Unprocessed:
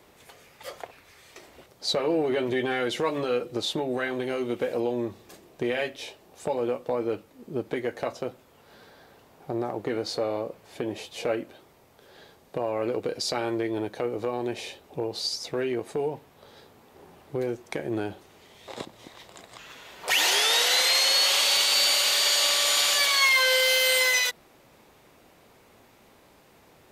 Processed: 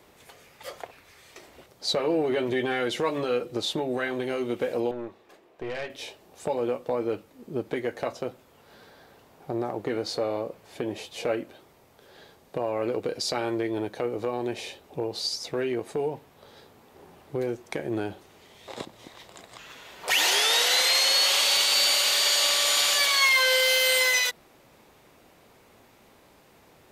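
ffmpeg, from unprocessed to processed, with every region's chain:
-filter_complex "[0:a]asettb=1/sr,asplit=3[s0][s1][s2];[s0]atrim=end=4.914[s3];[s1]atrim=start=4.91:end=5.9,asetpts=PTS-STARTPTS,afade=t=in:d=0.004:c=qsin,afade=t=out:st=0.986:d=0.004:c=qsin,bass=f=250:g=-14,treble=f=4000:g=-13,aeval=exprs='(tanh(25.1*val(0)+0.5)-tanh(0.5))/25.1':c=same[s4];[s2]atrim=start=5.896[s5];[s3][s4]acrossfade=d=0.004:c1=hsin:c2=qsin[s6];[s6][s5]acrossfade=d=0.004:c1=qsin:c2=hsin"

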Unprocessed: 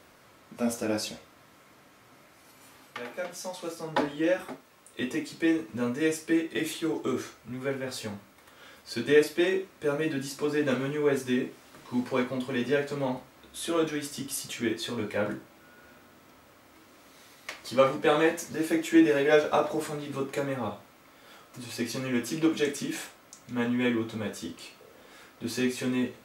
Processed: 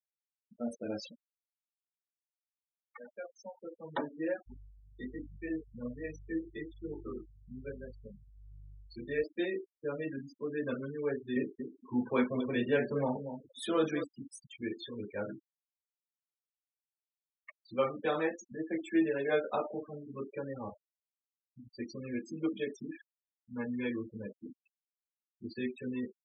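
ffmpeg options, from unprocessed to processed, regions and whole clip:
-filter_complex "[0:a]asettb=1/sr,asplit=3[s0][s1][s2];[s0]atrim=end=4.464[s3];[s1]atrim=start=4.46:end=9.24,asetpts=PTS-STARTPTS,afade=t=in:d=0.004:c=qsin,afade=t=out:st=4.776:d=0.004:c=qsin,aeval=exprs='val(0)+0.01*(sin(2*PI*50*n/s)+sin(2*PI*2*50*n/s)/2+sin(2*PI*3*50*n/s)/3+sin(2*PI*4*50*n/s)/4+sin(2*PI*5*50*n/s)/5)':c=same,flanger=delay=20:depth=6.9:speed=1.2[s4];[s2]atrim=start=9.236[s5];[s3][s4]acrossfade=d=0.004:c1=hsin:c2=qsin[s6];[s6][s5]acrossfade=d=0.004:c1=qsin:c2=hsin,asettb=1/sr,asplit=3[s7][s8][s9];[s7]atrim=end=11.364[s10];[s8]atrim=start=11.36:end=14.04,asetpts=PTS-STARTPTS,afade=t=in:d=0.004:c=qsin,afade=t=out:st=2.676:d=0.004:c=qsin,asplit=2[s11][s12];[s12]adelay=234,lowpass=f=890:p=1,volume=0.398,asplit=2[s13][s14];[s14]adelay=234,lowpass=f=890:p=1,volume=0.17,asplit=2[s15][s16];[s16]adelay=234,lowpass=f=890:p=1,volume=0.17[s17];[s11][s13][s15][s17]amix=inputs=4:normalize=0,atrim=end_sample=118188,acontrast=51[s18];[s9]atrim=start=14.036[s19];[s10][s18]acrossfade=d=0.004:c1=hsin:c2=qsin[s20];[s20][s19]acrossfade=d=0.004:c1=qsin:c2=hsin,lowpass=f=10000:w=0.5412,lowpass=f=10000:w=1.3066,afftfilt=real='re*gte(hypot(re,im),0.0447)':imag='im*gte(hypot(re,im),0.0447)':win_size=1024:overlap=0.75,volume=0.376"

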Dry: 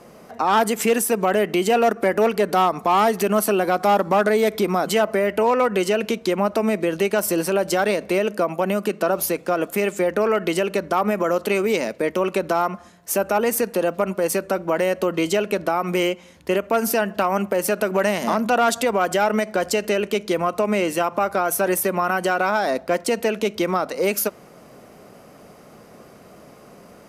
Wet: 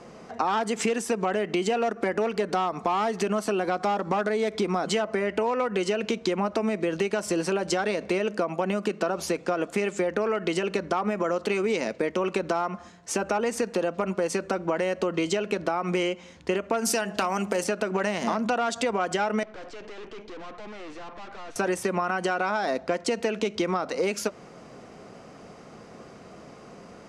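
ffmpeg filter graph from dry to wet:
-filter_complex "[0:a]asettb=1/sr,asplit=3[s0][s1][s2];[s0]atrim=end=16.854[s3];[s1]atrim=start=16.85:end=17.64,asetpts=PTS-STARTPTS,afade=t=in:d=0.004:c=qsin,afade=t=out:st=0.786:d=0.004:c=qsin,aemphasis=mode=production:type=75kf,bandreject=f=104:t=h:w=4,bandreject=f=208:t=h:w=4,bandreject=f=312:t=h:w=4,bandreject=f=416:t=h:w=4,bandreject=f=520:t=h:w=4,bandreject=f=624:t=h:w=4,bandreject=f=728:t=h:w=4,bandreject=f=832:t=h:w=4[s4];[s2]atrim=start=17.636[s5];[s3][s4]acrossfade=d=0.004:c1=hsin:c2=qsin[s6];[s6][s5]acrossfade=d=0.004:c1=qsin:c2=hsin,asettb=1/sr,asplit=3[s7][s8][s9];[s7]atrim=end=19.434[s10];[s8]atrim=start=19.43:end=21.56,asetpts=PTS-STARTPTS,afade=t=in:d=0.004:c=qsin,afade=t=out:st=2.126:d=0.004:c=qsin,highpass=f=240:w=0.5412,highpass=f=240:w=1.3066,aeval=exprs='(tanh(89.1*val(0)+0.65)-tanh(0.65))/89.1':c=same,adynamicsmooth=sensitivity=2.5:basefreq=4300[s11];[s9]atrim=start=21.556[s12];[s10][s11]acrossfade=d=0.004:c1=hsin:c2=qsin[s13];[s13][s12]acrossfade=d=0.004:c1=qsin:c2=hsin,lowpass=f=7700:w=0.5412,lowpass=f=7700:w=1.3066,bandreject=f=590:w=14,acompressor=threshold=0.0794:ratio=6"

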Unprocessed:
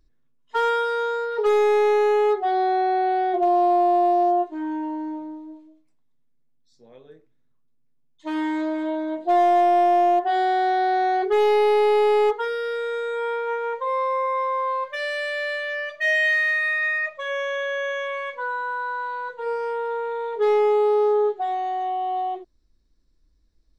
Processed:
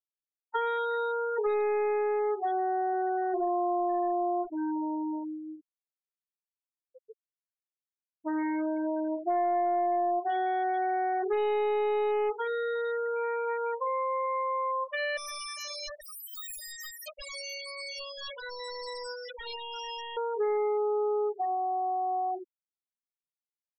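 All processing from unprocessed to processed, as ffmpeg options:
-filter_complex "[0:a]asettb=1/sr,asplit=3[s0][s1][s2];[s0]atrim=end=2.934[s3];[s1]atrim=start=2.93:end=4.49,asetpts=PTS-STARTPTS,afade=t=in:d=0.004:c=qsin,afade=t=out:st=1.556:d=0.004:c=qsin,aeval=exprs='val(0)+0.5*0.0211*sgn(val(0))':c=same,asuperstop=centerf=2400:order=4:qfactor=4.1,aecho=1:1:2.1:0.31,atrim=end_sample=68796[s4];[s2]atrim=start=4.486[s5];[s3][s4]acrossfade=d=0.004:c1=hsin:c2=qsin[s6];[s6][s5]acrossfade=d=0.004:c1=qsin:c2=hsin,asettb=1/sr,asplit=3[s7][s8][s9];[s7]atrim=end=15.174[s10];[s8]atrim=start=15.17:end=20.17,asetpts=PTS-STARTPTS,afade=t=in:d=0.004:c=qsin,afade=t=out:st=4.996:d=0.004:c=qsin,aeval=exprs='(mod(28.2*val(0)+1,2)-1)/28.2':c=same,aecho=1:1:136|272|408|544:0.126|0.0541|0.0233|0.01,atrim=end_sample=220500[s11];[s9]atrim=start=20.166[s12];[s10][s11]acrossfade=d=0.004:c1=hsin:c2=qsin[s13];[s13][s12]acrossfade=d=0.004:c1=qsin:c2=hsin,afftfilt=real='re*gte(hypot(re,im),0.0562)':imag='im*gte(hypot(re,im),0.0562)':win_size=1024:overlap=0.75,acompressor=threshold=0.0447:ratio=3,volume=0.841"

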